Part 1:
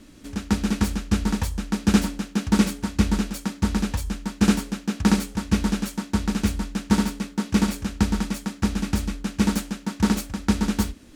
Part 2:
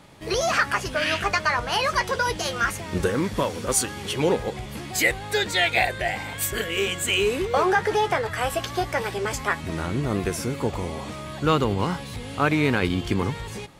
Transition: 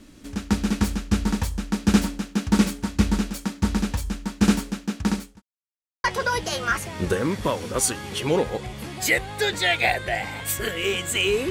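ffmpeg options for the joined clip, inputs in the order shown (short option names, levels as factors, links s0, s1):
-filter_complex "[0:a]apad=whole_dur=11.5,atrim=end=11.5,asplit=2[s0][s1];[s0]atrim=end=5.42,asetpts=PTS-STARTPTS,afade=t=out:st=4.59:d=0.83:c=qsin[s2];[s1]atrim=start=5.42:end=6.04,asetpts=PTS-STARTPTS,volume=0[s3];[1:a]atrim=start=1.97:end=7.43,asetpts=PTS-STARTPTS,afade=t=in:d=0.004:c=hsin[s4];[s2][s3][s4]concat=n=3:v=0:a=1"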